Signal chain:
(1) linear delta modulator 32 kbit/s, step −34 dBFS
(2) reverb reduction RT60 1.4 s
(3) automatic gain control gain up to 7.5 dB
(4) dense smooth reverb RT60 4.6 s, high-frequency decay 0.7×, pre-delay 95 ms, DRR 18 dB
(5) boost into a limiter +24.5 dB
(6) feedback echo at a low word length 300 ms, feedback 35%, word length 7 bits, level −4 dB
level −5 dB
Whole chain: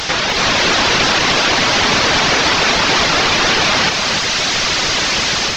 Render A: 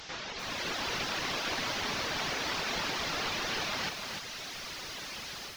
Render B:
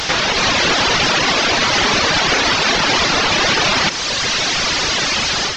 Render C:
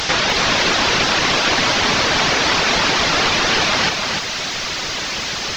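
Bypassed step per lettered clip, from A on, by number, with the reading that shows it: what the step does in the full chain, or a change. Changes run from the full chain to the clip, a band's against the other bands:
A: 5, change in crest factor +1.5 dB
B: 6, change in crest factor −3.0 dB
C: 3, change in momentary loudness spread +4 LU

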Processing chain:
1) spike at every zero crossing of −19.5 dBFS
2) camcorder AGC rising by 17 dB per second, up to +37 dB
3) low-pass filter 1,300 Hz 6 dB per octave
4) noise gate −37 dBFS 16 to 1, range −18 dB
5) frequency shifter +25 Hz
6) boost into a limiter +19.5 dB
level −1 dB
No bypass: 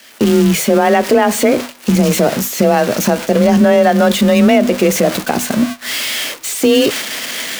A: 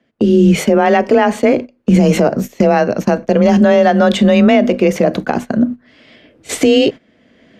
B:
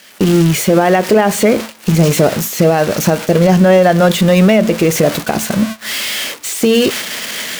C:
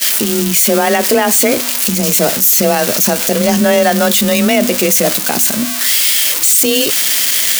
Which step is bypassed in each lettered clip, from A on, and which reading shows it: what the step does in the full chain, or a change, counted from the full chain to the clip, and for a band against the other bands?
1, distortion level −2 dB
5, 125 Hz band +5.5 dB
3, 8 kHz band +11.5 dB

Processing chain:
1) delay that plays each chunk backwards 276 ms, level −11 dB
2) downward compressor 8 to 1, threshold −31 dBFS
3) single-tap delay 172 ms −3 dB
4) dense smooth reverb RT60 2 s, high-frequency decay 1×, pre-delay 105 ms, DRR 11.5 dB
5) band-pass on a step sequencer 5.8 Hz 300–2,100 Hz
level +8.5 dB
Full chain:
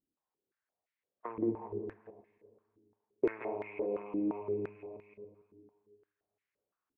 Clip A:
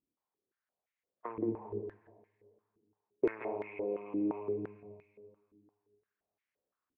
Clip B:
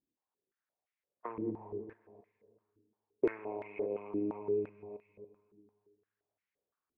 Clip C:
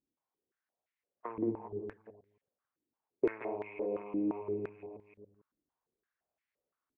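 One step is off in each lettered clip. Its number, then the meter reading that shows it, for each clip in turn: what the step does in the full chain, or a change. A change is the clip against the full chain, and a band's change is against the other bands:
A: 1, change in momentary loudness spread −5 LU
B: 3, change in momentary loudness spread −1 LU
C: 4, change in momentary loudness spread −5 LU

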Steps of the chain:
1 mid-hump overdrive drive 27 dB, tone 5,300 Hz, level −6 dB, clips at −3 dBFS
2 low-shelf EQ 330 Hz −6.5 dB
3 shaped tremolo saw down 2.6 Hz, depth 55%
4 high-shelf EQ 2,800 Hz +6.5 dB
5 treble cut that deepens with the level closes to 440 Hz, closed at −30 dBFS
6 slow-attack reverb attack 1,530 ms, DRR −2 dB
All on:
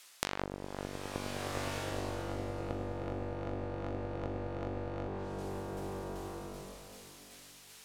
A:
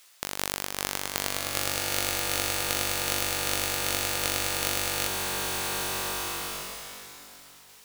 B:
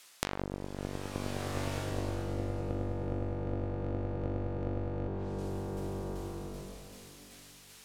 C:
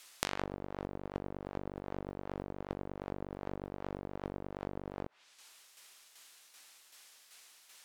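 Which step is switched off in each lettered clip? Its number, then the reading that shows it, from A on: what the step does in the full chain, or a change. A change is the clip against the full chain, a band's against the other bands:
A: 5, 8 kHz band +15.5 dB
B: 2, change in crest factor −3.0 dB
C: 6, change in momentary loudness spread +3 LU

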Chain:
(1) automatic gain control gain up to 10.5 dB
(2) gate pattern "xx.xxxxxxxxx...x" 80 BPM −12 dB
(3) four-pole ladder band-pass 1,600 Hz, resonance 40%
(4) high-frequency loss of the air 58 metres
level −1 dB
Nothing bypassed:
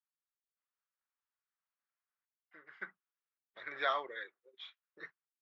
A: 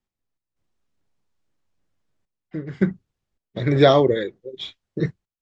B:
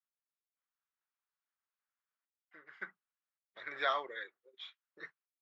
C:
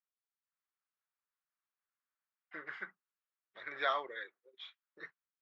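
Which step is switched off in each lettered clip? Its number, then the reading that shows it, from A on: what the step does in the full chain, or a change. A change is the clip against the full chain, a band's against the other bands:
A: 3, 250 Hz band +23.5 dB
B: 4, change in momentary loudness spread +3 LU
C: 2, 250 Hz band +2.0 dB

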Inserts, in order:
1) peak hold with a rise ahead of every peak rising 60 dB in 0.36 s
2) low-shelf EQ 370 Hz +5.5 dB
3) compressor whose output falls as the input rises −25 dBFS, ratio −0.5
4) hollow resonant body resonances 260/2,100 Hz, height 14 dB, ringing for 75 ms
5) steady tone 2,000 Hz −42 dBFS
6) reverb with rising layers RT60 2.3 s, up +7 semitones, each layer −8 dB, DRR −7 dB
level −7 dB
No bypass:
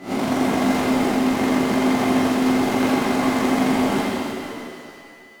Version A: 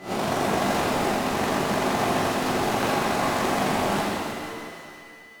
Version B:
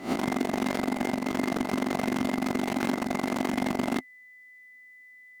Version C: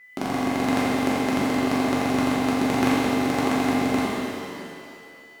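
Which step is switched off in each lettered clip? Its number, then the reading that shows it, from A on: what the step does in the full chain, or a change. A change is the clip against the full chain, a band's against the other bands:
4, 250 Hz band −8.5 dB
6, change in momentary loudness spread −9 LU
1, 125 Hz band +1.5 dB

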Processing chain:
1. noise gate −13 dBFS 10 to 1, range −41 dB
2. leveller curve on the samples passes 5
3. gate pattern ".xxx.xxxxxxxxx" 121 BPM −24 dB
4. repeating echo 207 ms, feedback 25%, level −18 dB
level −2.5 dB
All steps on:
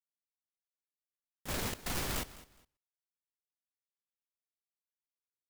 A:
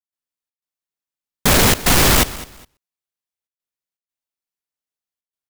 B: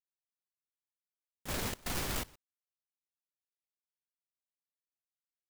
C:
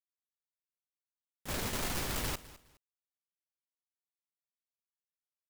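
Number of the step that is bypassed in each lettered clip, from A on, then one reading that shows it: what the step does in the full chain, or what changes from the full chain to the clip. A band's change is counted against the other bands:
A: 1, change in momentary loudness spread −4 LU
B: 4, change in momentary loudness spread −2 LU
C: 3, change in integrated loudness +1.5 LU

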